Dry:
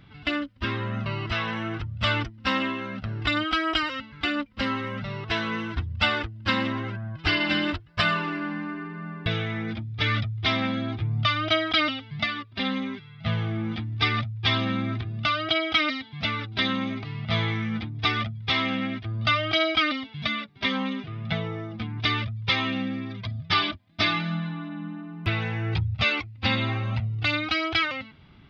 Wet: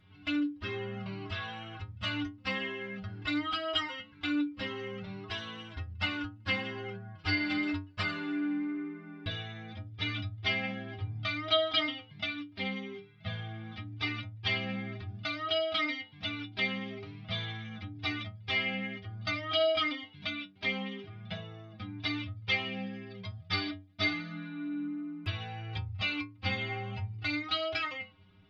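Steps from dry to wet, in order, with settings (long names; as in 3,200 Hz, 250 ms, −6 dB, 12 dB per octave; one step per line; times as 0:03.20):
stiff-string resonator 94 Hz, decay 0.38 s, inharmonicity 0.008
level +2 dB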